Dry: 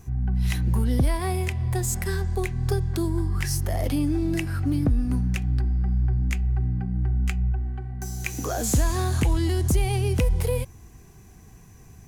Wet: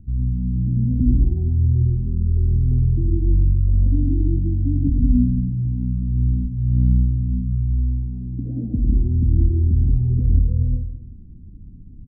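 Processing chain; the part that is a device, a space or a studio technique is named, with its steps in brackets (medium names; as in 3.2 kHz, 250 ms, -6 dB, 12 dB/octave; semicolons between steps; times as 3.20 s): club heard from the street (peak limiter -18.5 dBFS, peak gain reduction 6.5 dB; low-pass 250 Hz 24 dB/octave; reverberation RT60 0.70 s, pre-delay 101 ms, DRR 0 dB); comb 3.7 ms, depth 39%; trim +5 dB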